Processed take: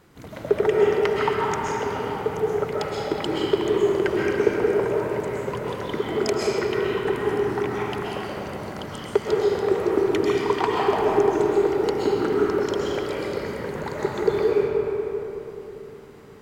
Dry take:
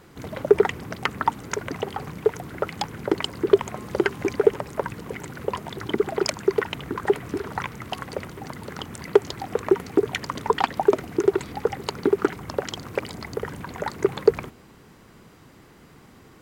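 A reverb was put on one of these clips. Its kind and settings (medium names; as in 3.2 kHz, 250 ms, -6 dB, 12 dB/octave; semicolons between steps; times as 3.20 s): algorithmic reverb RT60 3.7 s, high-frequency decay 0.5×, pre-delay 90 ms, DRR -5.5 dB; trim -5 dB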